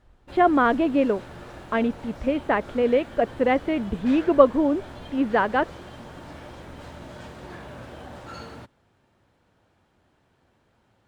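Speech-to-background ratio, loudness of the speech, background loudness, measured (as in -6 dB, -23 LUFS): 18.5 dB, -23.0 LUFS, -41.5 LUFS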